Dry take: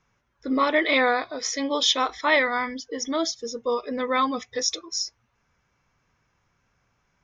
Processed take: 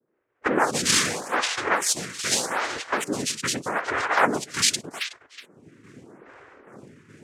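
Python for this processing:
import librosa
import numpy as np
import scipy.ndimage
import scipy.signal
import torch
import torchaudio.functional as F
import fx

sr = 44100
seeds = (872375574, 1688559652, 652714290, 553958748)

y = fx.recorder_agc(x, sr, target_db=-15.0, rise_db_per_s=43.0, max_gain_db=30)
y = fx.tremolo_shape(y, sr, shape='saw_down', hz=2.4, depth_pct=50)
y = fx.env_lowpass(y, sr, base_hz=340.0, full_db=-22.5)
y = fx.peak_eq(y, sr, hz=750.0, db=-7.0, octaves=0.97, at=(1.75, 4.04))
y = fx.noise_vocoder(y, sr, seeds[0], bands=3)
y = fx.low_shelf(y, sr, hz=380.0, db=-6.5)
y = y + 10.0 ** (-14.0 / 20.0) * np.pad(y, (int(370 * sr / 1000.0), 0))[:len(y)]
y = fx.stagger_phaser(y, sr, hz=0.82)
y = F.gain(torch.from_numpy(y), 6.0).numpy()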